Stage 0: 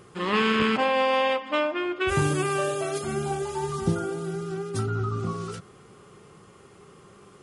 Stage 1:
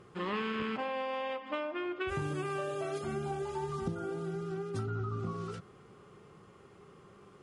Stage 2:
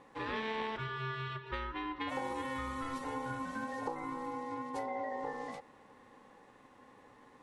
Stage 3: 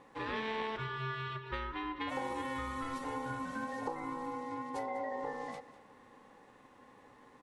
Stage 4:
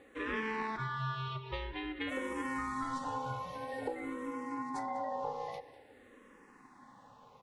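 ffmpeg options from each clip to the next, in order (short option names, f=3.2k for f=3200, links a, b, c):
-af "aemphasis=mode=reproduction:type=50kf,acompressor=threshold=-27dB:ratio=5,volume=-5dB"
-af "aeval=exprs='val(0)*sin(2*PI*660*n/s)':c=same"
-af "aecho=1:1:198:0.158"
-filter_complex "[0:a]asplit=2[a][b];[b]afreqshift=-0.5[c];[a][c]amix=inputs=2:normalize=1,volume=3.5dB"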